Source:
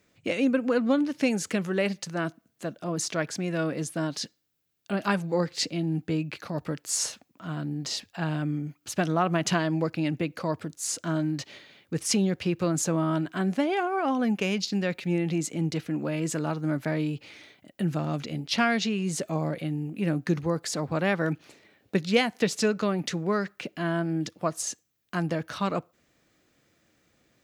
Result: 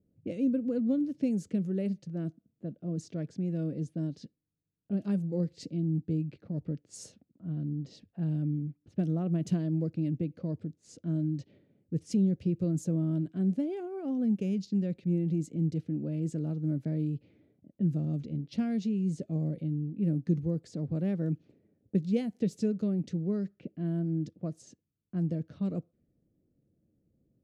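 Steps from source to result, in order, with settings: level-controlled noise filter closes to 960 Hz, open at -23 dBFS; FFT filter 190 Hz 0 dB, 530 Hz -10 dB, 1 kHz -28 dB, 8.1 kHz -17 dB

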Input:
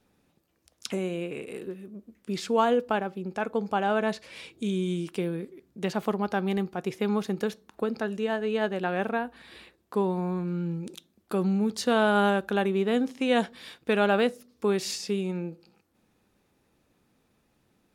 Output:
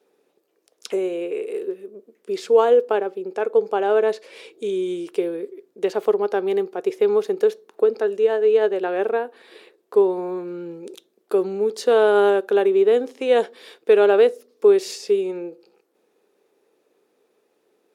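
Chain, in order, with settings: resonant high-pass 420 Hz, resonance Q 4.9

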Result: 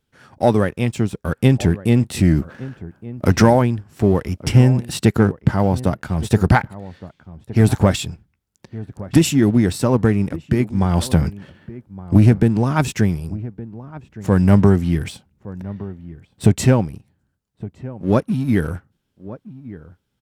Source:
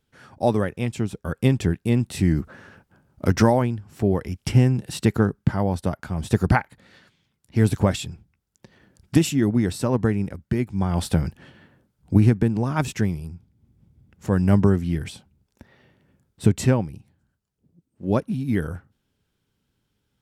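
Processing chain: waveshaping leveller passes 1; echo from a far wall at 200 m, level -17 dB; trim +2 dB

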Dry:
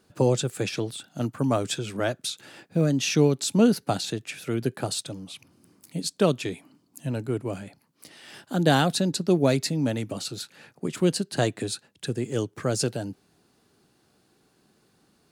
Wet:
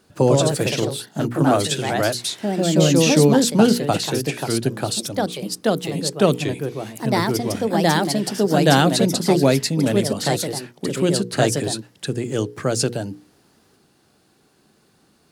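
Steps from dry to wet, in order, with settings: ever faster or slower copies 123 ms, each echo +2 st, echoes 2; hum notches 60/120/180/240/300/360/420/480 Hz; trim +5.5 dB

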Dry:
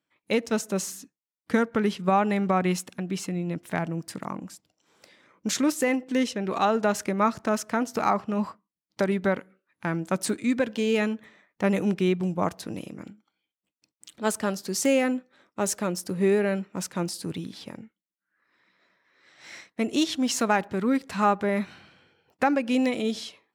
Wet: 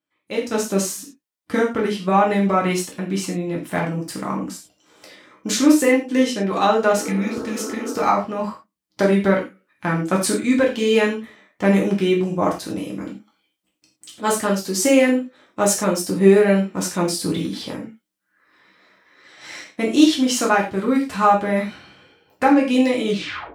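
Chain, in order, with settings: tape stop on the ending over 0.50 s; peaking EQ 290 Hz +5.5 dB 0.25 oct; level rider gain up to 14 dB; spectral replace 6.99–7.90 s, 250–1700 Hz after; gated-style reverb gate 130 ms falling, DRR -2.5 dB; trim -7 dB

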